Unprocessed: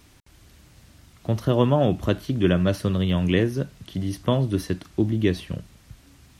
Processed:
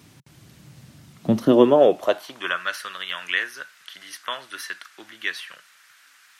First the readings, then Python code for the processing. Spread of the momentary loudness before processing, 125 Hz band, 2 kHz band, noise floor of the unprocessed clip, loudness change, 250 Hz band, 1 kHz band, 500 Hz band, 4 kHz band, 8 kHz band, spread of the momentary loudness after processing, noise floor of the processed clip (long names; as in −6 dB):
11 LU, −14.0 dB, +8.0 dB, −54 dBFS, +1.0 dB, −1.5 dB, +4.0 dB, +4.0 dB, +3.5 dB, +2.5 dB, 22 LU, −55 dBFS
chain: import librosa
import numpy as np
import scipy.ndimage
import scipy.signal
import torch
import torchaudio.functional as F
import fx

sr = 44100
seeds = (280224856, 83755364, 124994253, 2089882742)

y = fx.filter_sweep_highpass(x, sr, from_hz=140.0, to_hz=1500.0, start_s=1.08, end_s=2.65, q=2.9)
y = y * librosa.db_to_amplitude(2.0)